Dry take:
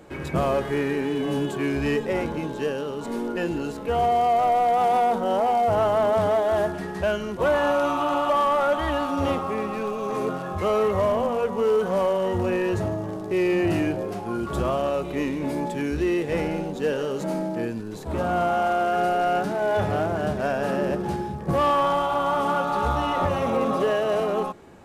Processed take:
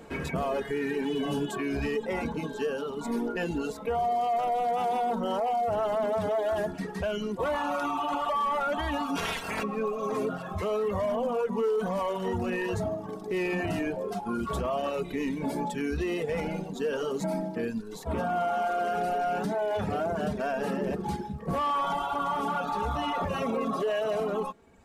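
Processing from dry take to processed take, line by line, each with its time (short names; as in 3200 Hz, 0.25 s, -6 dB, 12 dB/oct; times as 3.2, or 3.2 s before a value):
9.15–9.62 spectral limiter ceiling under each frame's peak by 26 dB
whole clip: reverb removal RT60 1.4 s; comb 4.4 ms, depth 45%; limiter -22 dBFS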